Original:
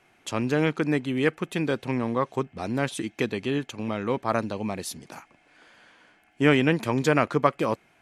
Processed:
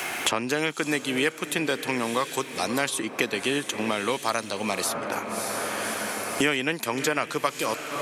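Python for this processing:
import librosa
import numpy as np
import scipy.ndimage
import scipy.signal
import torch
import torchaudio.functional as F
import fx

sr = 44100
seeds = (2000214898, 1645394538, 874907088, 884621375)

y = fx.riaa(x, sr, side='recording')
y = fx.echo_diffused(y, sr, ms=595, feedback_pct=46, wet_db=-14.5)
y = fx.band_squash(y, sr, depth_pct=100)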